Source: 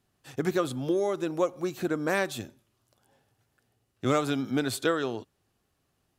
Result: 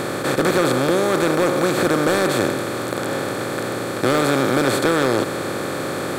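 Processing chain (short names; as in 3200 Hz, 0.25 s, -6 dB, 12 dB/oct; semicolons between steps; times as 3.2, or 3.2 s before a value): per-bin compression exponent 0.2; hard clip -12 dBFS, distortion -19 dB; gain +2.5 dB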